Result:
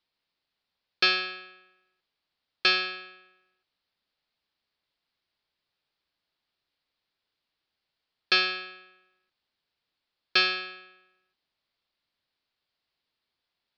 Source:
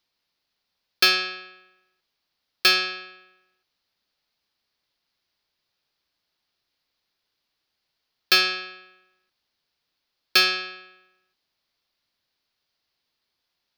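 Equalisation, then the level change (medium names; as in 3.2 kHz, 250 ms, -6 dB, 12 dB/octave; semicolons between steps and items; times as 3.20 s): low-pass 4.6 kHz 24 dB/octave; -3.5 dB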